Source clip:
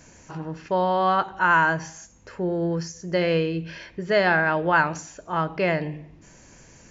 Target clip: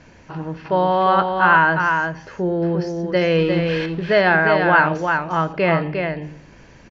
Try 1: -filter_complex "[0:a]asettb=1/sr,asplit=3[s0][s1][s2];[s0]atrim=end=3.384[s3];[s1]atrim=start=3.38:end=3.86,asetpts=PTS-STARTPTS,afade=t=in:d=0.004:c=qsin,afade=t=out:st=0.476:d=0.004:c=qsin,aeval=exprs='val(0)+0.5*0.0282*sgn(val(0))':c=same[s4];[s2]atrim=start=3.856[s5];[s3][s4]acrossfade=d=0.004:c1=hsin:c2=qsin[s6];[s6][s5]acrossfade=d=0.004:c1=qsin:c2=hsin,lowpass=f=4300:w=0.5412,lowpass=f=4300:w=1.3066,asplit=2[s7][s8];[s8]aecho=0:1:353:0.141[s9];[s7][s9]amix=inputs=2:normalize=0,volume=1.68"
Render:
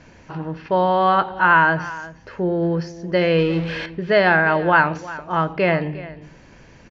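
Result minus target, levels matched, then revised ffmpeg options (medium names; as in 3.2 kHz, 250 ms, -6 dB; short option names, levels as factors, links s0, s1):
echo-to-direct -12 dB
-filter_complex "[0:a]asettb=1/sr,asplit=3[s0][s1][s2];[s0]atrim=end=3.384[s3];[s1]atrim=start=3.38:end=3.86,asetpts=PTS-STARTPTS,afade=t=in:d=0.004:c=qsin,afade=t=out:st=0.476:d=0.004:c=qsin,aeval=exprs='val(0)+0.5*0.0282*sgn(val(0))':c=same[s4];[s2]atrim=start=3.856[s5];[s3][s4]acrossfade=d=0.004:c1=hsin:c2=qsin[s6];[s6][s5]acrossfade=d=0.004:c1=qsin:c2=hsin,lowpass=f=4300:w=0.5412,lowpass=f=4300:w=1.3066,asplit=2[s7][s8];[s8]aecho=0:1:353:0.562[s9];[s7][s9]amix=inputs=2:normalize=0,volume=1.68"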